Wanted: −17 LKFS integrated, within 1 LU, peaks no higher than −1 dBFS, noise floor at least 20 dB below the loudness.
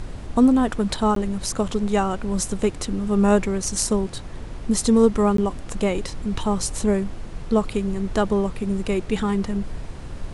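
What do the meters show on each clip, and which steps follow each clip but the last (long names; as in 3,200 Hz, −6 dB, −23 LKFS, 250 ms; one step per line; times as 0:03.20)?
number of dropouts 2; longest dropout 13 ms; background noise floor −35 dBFS; target noise floor −43 dBFS; integrated loudness −22.5 LKFS; sample peak −5.0 dBFS; target loudness −17.0 LKFS
→ repair the gap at 0:01.15/0:05.37, 13 ms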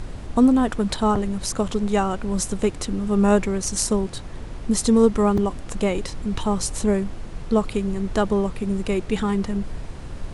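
number of dropouts 0; background noise floor −35 dBFS; target noise floor −43 dBFS
→ noise reduction from a noise print 8 dB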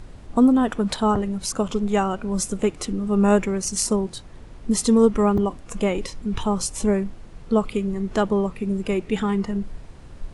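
background noise floor −42 dBFS; target noise floor −43 dBFS
→ noise reduction from a noise print 6 dB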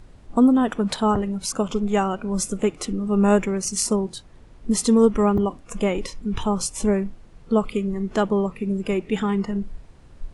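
background noise floor −48 dBFS; integrated loudness −22.5 LKFS; sample peak −4.5 dBFS; target loudness −17.0 LKFS
→ level +5.5 dB
brickwall limiter −1 dBFS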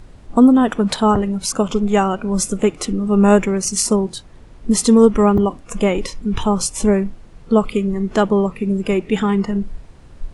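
integrated loudness −17.0 LKFS; sample peak −1.0 dBFS; background noise floor −42 dBFS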